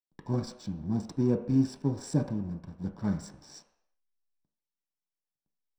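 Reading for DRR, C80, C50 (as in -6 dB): 3.0 dB, 11.5 dB, 9.0 dB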